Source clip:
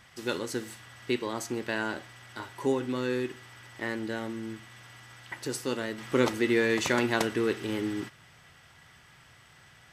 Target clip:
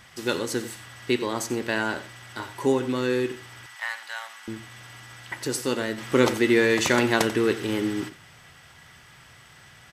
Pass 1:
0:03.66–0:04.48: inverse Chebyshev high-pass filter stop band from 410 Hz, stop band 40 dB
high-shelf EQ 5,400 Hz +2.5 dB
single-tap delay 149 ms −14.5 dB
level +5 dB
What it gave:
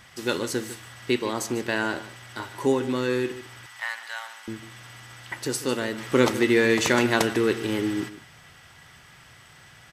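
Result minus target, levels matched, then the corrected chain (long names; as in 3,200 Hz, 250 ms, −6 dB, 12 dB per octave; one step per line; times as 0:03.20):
echo 59 ms late
0:03.66–0:04.48: inverse Chebyshev high-pass filter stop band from 410 Hz, stop band 40 dB
high-shelf EQ 5,400 Hz +2.5 dB
single-tap delay 90 ms −14.5 dB
level +5 dB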